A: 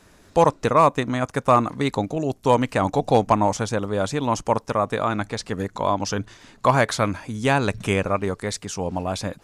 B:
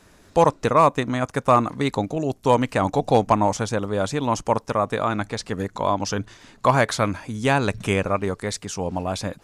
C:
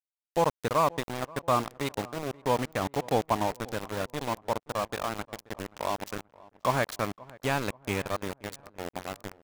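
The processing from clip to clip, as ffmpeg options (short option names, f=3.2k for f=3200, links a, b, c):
-af anull
-filter_complex "[0:a]aeval=exprs='val(0)*gte(abs(val(0)),0.0891)':c=same,asplit=2[a][b];[b]adelay=530,lowpass=f=1.5k:p=1,volume=-21dB,asplit=2[c][d];[d]adelay=530,lowpass=f=1.5k:p=1,volume=0.45,asplit=2[e][f];[f]adelay=530,lowpass=f=1.5k:p=1,volume=0.45[g];[a][c][e][g]amix=inputs=4:normalize=0,volume=-8.5dB"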